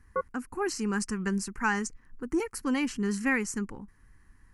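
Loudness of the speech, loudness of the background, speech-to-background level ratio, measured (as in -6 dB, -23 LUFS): -31.0 LUFS, -37.5 LUFS, 6.5 dB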